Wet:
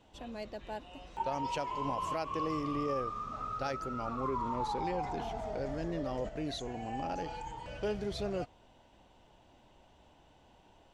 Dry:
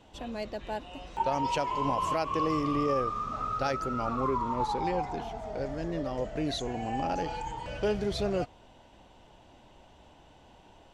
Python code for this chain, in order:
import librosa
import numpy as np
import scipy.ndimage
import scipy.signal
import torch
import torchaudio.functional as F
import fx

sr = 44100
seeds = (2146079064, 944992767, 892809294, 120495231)

y = fx.env_flatten(x, sr, amount_pct=50, at=(4.24, 6.29))
y = y * 10.0 ** (-6.0 / 20.0)